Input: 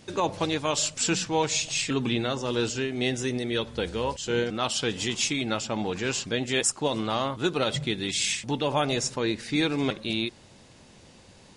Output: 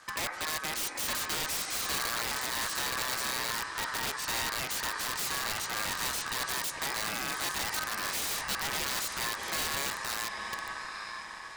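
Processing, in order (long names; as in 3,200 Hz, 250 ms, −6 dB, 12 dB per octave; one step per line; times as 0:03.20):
tuned comb filter 370 Hz, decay 0.42 s, harmonics all, mix 30%
on a send: feedback delay with all-pass diffusion 854 ms, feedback 50%, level −11 dB
on the sum: brickwall limiter −23 dBFS, peak gain reduction 8 dB
ring modulation 1,400 Hz
wrap-around overflow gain 29.5 dB
level +4 dB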